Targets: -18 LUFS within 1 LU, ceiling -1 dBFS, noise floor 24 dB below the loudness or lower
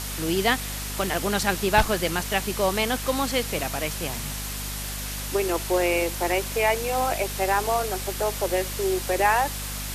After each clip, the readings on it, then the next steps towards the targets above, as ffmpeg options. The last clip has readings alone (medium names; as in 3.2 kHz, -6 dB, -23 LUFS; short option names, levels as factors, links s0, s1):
hum 50 Hz; highest harmonic 250 Hz; hum level -32 dBFS; noise floor -32 dBFS; noise floor target -49 dBFS; loudness -25.0 LUFS; peak level -6.0 dBFS; loudness target -18.0 LUFS
-> -af "bandreject=f=50:t=h:w=4,bandreject=f=100:t=h:w=4,bandreject=f=150:t=h:w=4,bandreject=f=200:t=h:w=4,bandreject=f=250:t=h:w=4"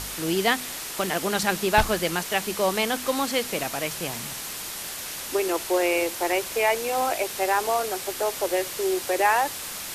hum not found; noise floor -35 dBFS; noise floor target -49 dBFS
-> -af "afftdn=nr=14:nf=-35"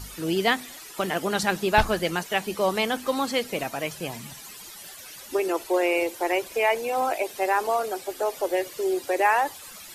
noise floor -43 dBFS; noise floor target -50 dBFS
-> -af "afftdn=nr=7:nf=-43"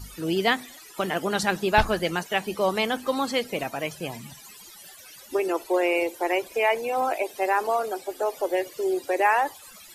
noise floor -47 dBFS; noise floor target -50 dBFS
-> -af "afftdn=nr=6:nf=-47"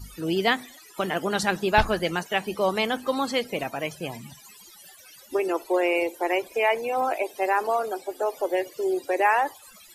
noise floor -50 dBFS; loudness -25.5 LUFS; peak level -6.0 dBFS; loudness target -18.0 LUFS
-> -af "volume=2.37,alimiter=limit=0.891:level=0:latency=1"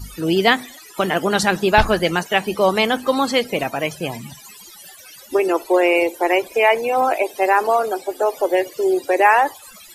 loudness -18.5 LUFS; peak level -1.0 dBFS; noise floor -43 dBFS